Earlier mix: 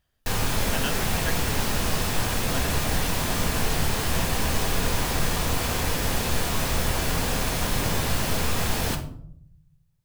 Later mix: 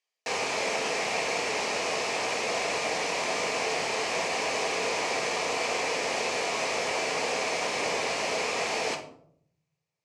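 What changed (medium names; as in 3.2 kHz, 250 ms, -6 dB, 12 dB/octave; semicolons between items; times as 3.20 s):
speech: add differentiator; master: add cabinet simulation 450–7000 Hz, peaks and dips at 450 Hz +6 dB, 670 Hz +4 dB, 1.5 kHz -8 dB, 2.3 kHz +7 dB, 3.5 kHz -6 dB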